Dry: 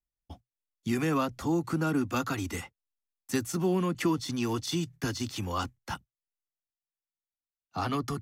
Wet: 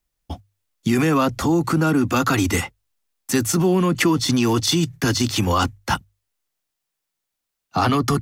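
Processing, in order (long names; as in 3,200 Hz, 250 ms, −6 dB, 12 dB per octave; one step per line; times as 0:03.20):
mains-hum notches 50/100 Hz
in parallel at −2 dB: compressor whose output falls as the input rises −32 dBFS, ratio −0.5
on the sum: level +8 dB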